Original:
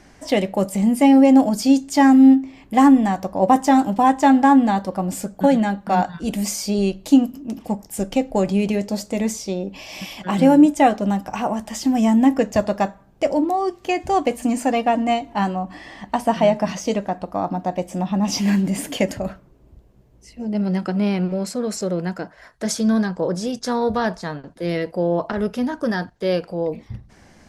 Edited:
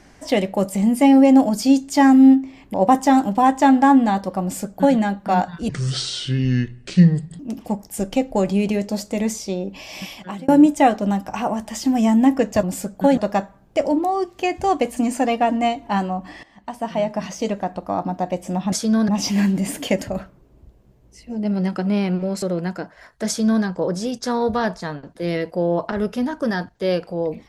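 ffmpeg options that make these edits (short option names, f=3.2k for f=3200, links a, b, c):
-filter_complex "[0:a]asplit=11[a][b][c][d][e][f][g][h][i][j][k];[a]atrim=end=2.742[l];[b]atrim=start=3.348:end=6.304[m];[c]atrim=start=6.3:end=7.39,asetpts=PTS-STARTPTS,asetrate=28224,aresample=44100[n];[d]atrim=start=7.386:end=10.48,asetpts=PTS-STARTPTS,afade=t=out:st=2.664:d=0.43[o];[e]atrim=start=10.48:end=12.632,asetpts=PTS-STARTPTS,afade=t=in:d=0.004:c=hsin[p];[f]atrim=start=5.028:end=5.572[q];[g]atrim=start=12.628:end=15.89,asetpts=PTS-STARTPTS,afade=t=out:st=3.258:d=0.004:c=hsin:silence=0.158489[r];[h]atrim=start=15.89:end=18.182,asetpts=PTS-STARTPTS,afade=t=in:d=1.29:silence=0.158489[s];[i]atrim=start=22.678:end=23.042[t];[j]atrim=start=18.178:end=21.522[u];[k]atrim=start=21.828[v];[l][m]acrossfade=d=0.004:c1=hsin:c2=hsin[w];[w][n]acrossfade=d=0.004:c1=hsin:c2=hsin[x];[o][p]concat=n=2:v=0:a=1[y];[x][y]acrossfade=d=0.004:c1=hsin:c2=hsin[z];[z][q]acrossfade=d=0.004:c1=hsin:c2=hsin[aa];[r][s]concat=n=2:v=0:a=1[ab];[aa][ab]acrossfade=d=0.004:c1=hsin:c2=hsin[ac];[ac][t]acrossfade=d=0.004:c1=hsin:c2=hsin[ad];[ad][u]acrossfade=d=0.004:c1=hsin:c2=hsin[ae];[ae][v]acrossfade=d=0.004:c1=hsin:c2=hsin"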